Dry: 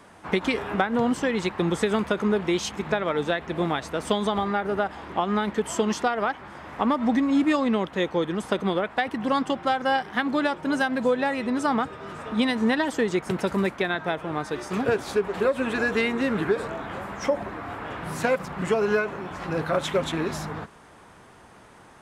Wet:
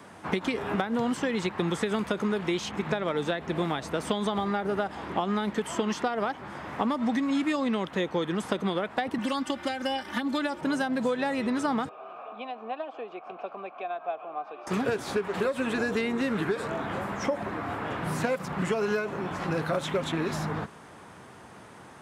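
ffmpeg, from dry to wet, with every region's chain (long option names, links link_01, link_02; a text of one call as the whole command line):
ffmpeg -i in.wav -filter_complex "[0:a]asettb=1/sr,asplit=3[link_01][link_02][link_03];[link_01]atrim=end=9.184[link_04];[link_02]atrim=start=9.18:end=10.61,asetpts=PTS-STARTPTS,afade=type=in:duration=0.004:curve=qsin,afade=type=out:start_time=1.426:duration=0.004:curve=qsin,highshelf=frequency=4800:gain=7,acrossover=split=110|1300[link_05][link_06][link_07];[link_05]acompressor=threshold=-55dB:ratio=4[link_08];[link_06]acompressor=threshold=-34dB:ratio=4[link_09];[link_07]acompressor=threshold=-32dB:ratio=4[link_10];[link_08][link_09][link_10]amix=inputs=3:normalize=0,aecho=1:1:3.4:0.88,atrim=end_sample=63063[link_11];[link_03]atrim=start=10.606[link_12];[link_04][link_11]acrossfade=duration=0.004:curve1=hsin:curve2=qsin[link_13];[link_13][link_12]acrossfade=duration=0.004:curve1=qsin:curve2=hsin,asettb=1/sr,asplit=3[link_14][link_15][link_16];[link_14]atrim=end=11.894[link_17];[link_15]atrim=start=11.89:end=14.67,asetpts=PTS-STARTPTS,afade=type=in:duration=0.004:curve=qsin,afade=type=out:start_time=2.776:duration=0.004:curve=qsin,acrossover=split=220 4600:gain=0.251 1 0.0891[link_18][link_19][link_20];[link_18][link_19][link_20]amix=inputs=3:normalize=0,acompressor=mode=upward:threshold=-26dB:ratio=2.5:attack=3.2:release=140:knee=2.83:detection=peak,asplit=3[link_21][link_22][link_23];[link_21]bandpass=frequency=730:width_type=q:width=8,volume=0dB[link_24];[link_22]bandpass=frequency=1090:width_type=q:width=8,volume=-6dB[link_25];[link_23]bandpass=frequency=2440:width_type=q:width=8,volume=-9dB[link_26];[link_24][link_25][link_26]amix=inputs=3:normalize=0[link_27];[link_16]atrim=start=14.666[link_28];[link_17][link_27]acrossfade=duration=0.004:curve1=hsin:curve2=qsin[link_29];[link_29][link_28]acrossfade=duration=0.004:curve1=qsin:curve2=hsin,highpass=110,lowshelf=frequency=170:gain=6,acrossover=split=970|3600[link_30][link_31][link_32];[link_30]acompressor=threshold=-28dB:ratio=4[link_33];[link_31]acompressor=threshold=-37dB:ratio=4[link_34];[link_32]acompressor=threshold=-44dB:ratio=4[link_35];[link_33][link_34][link_35]amix=inputs=3:normalize=0,volume=1.5dB" out.wav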